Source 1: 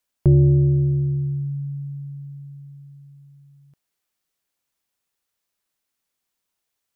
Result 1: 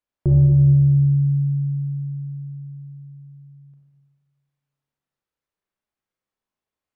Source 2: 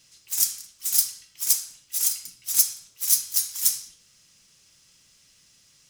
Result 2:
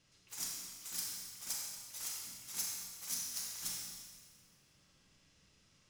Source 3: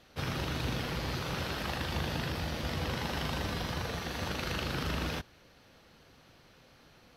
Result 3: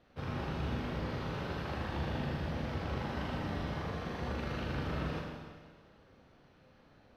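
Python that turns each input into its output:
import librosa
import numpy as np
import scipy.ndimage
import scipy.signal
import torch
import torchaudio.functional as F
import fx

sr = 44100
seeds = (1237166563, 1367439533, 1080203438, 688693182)

y = fx.lowpass(x, sr, hz=1200.0, slope=6)
y = fx.rev_schroeder(y, sr, rt60_s=1.6, comb_ms=29, drr_db=-1.0)
y = F.gain(torch.from_numpy(y), -4.0).numpy()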